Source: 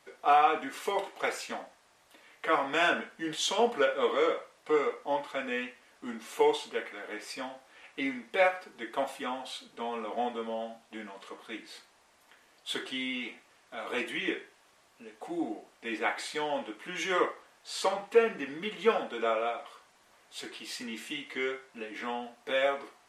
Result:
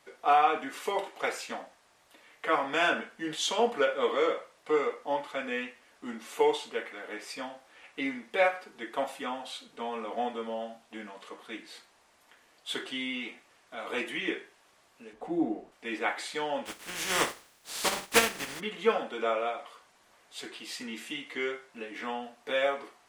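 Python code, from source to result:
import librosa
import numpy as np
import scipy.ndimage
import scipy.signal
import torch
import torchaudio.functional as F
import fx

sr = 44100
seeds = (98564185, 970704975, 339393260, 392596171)

y = fx.tilt_eq(x, sr, slope=-3.0, at=(15.13, 15.72))
y = fx.spec_flatten(y, sr, power=0.35, at=(16.65, 18.59), fade=0.02)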